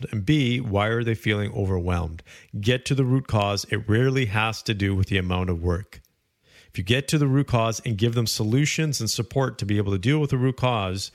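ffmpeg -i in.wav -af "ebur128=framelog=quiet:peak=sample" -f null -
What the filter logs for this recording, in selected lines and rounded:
Integrated loudness:
  I:         -23.5 LUFS
  Threshold: -34.0 LUFS
Loudness range:
  LRA:         1.9 LU
  Threshold: -44.1 LUFS
  LRA low:   -25.1 LUFS
  LRA high:  -23.2 LUFS
Sample peak:
  Peak:       -7.6 dBFS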